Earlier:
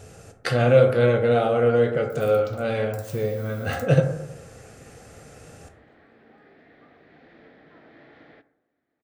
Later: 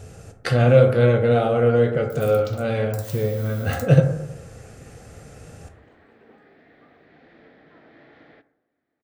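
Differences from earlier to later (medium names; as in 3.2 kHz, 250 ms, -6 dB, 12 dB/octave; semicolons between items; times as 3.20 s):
speech: add bass shelf 190 Hz +7.5 dB; first sound +6.5 dB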